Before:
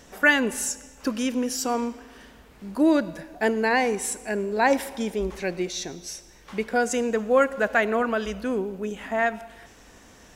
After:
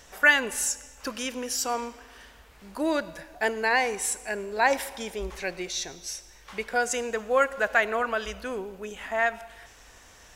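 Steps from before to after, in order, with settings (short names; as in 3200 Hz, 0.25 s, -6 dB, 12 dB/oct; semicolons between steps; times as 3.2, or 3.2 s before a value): bell 230 Hz -12.5 dB 2 oct; gain +1 dB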